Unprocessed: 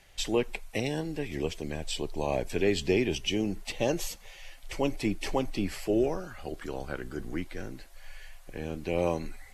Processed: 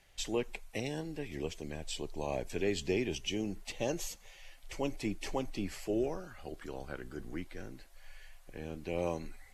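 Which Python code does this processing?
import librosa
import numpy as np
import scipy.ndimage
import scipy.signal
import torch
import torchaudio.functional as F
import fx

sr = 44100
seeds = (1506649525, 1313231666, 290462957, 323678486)

y = fx.dynamic_eq(x, sr, hz=6700.0, q=3.7, threshold_db=-58.0, ratio=4.0, max_db=5)
y = F.gain(torch.from_numpy(y), -6.5).numpy()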